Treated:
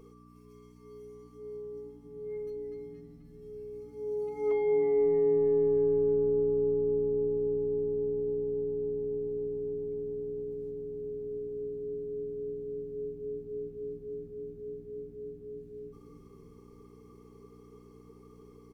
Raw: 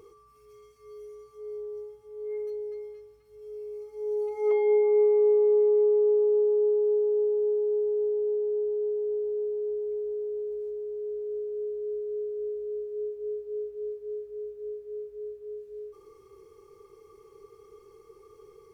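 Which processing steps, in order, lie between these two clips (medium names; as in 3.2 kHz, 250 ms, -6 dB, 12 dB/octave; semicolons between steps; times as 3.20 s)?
mains buzz 60 Hz, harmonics 5, -46 dBFS; peaking EQ 66 Hz -12 dB 2.1 oct; frequency-shifting echo 315 ms, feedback 64%, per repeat -130 Hz, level -15 dB; trim -3.5 dB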